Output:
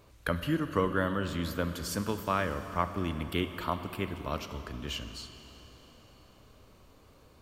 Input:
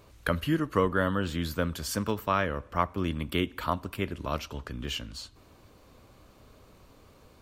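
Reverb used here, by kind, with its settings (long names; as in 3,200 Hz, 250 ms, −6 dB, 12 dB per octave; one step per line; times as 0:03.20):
four-comb reverb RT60 3.9 s, combs from 31 ms, DRR 9 dB
level −3 dB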